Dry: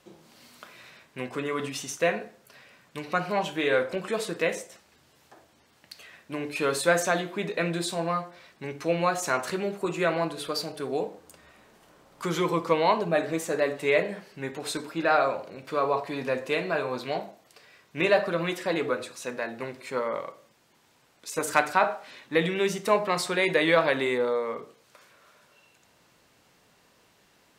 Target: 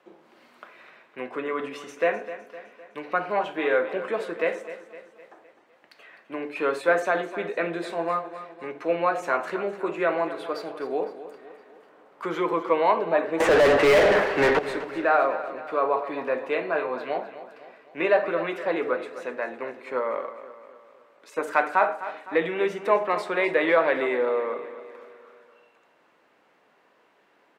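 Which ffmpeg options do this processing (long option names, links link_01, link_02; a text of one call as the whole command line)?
ffmpeg -i in.wav -filter_complex "[0:a]asoftclip=type=tanh:threshold=-7dB,acrossover=split=250 2600:gain=0.0708 1 0.112[link_01][link_02][link_03];[link_01][link_02][link_03]amix=inputs=3:normalize=0,asettb=1/sr,asplit=3[link_04][link_05][link_06];[link_04]atrim=end=13.404[link_07];[link_05]atrim=start=13.4:end=14.59,asetpts=PTS-STARTPTS,afade=type=in:duration=0.004:curve=qsin,afade=type=out:start_time=1.186:duration=0.004:curve=qsin,asplit=2[link_08][link_09];[link_09]highpass=frequency=720:poles=1,volume=37dB,asoftclip=type=tanh:threshold=-12.5dB[link_10];[link_08][link_10]amix=inputs=2:normalize=0,lowpass=frequency=1600:poles=1,volume=-6dB[link_11];[link_06]atrim=start=14.586[link_12];[link_07][link_11]acrossfade=duration=0.004:curve1=hsin:curve2=qsin[link_13];[link_13][link_12]acrossfade=duration=0.004:curve1=qsin:curve2=hsin,asplit=2[link_14][link_15];[link_15]aecho=0:1:255|510|765|1020|1275:0.211|0.106|0.0528|0.0264|0.0132[link_16];[link_14][link_16]amix=inputs=2:normalize=0,volume=2.5dB" out.wav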